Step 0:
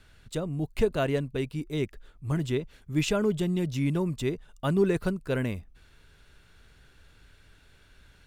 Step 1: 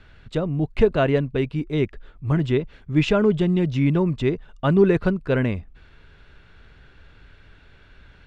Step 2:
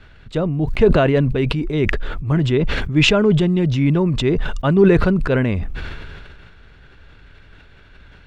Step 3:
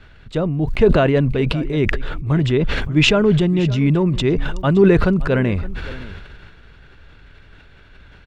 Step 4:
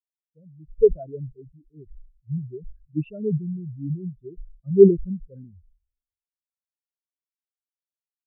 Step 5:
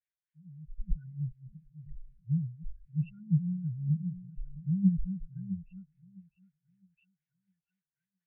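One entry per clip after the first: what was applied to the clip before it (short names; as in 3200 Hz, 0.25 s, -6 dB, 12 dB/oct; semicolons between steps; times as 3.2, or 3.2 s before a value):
LPF 3100 Hz 12 dB/oct; gain +7.5 dB
sustainer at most 25 dB/s; gain +2.5 dB
echo 0.568 s -18 dB
spectral expander 4:1
brick-wall FIR band-stop 190–1400 Hz; delay with a stepping band-pass 0.659 s, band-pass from 310 Hz, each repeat 0.7 oct, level -4 dB; LFO low-pass sine 3.9 Hz 970–2300 Hz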